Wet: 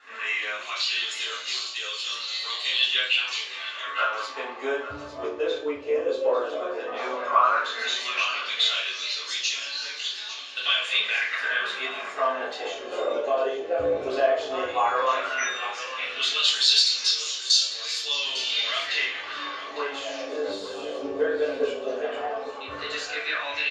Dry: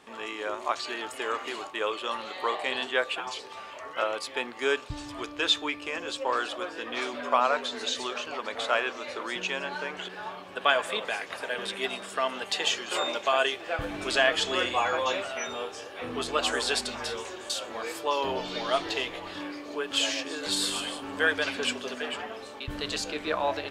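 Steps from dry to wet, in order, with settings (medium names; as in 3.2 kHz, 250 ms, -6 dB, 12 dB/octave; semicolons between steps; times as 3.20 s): low-pass 12 kHz 24 dB/octave; treble shelf 2.9 kHz +9.5 dB; compression 2:1, threshold -27 dBFS, peak gain reduction 8 dB; LFO band-pass sine 0.13 Hz 490–4700 Hz; delay 852 ms -13.5 dB; reverberation RT60 0.50 s, pre-delay 3 ms, DRR -8 dB; trim -4 dB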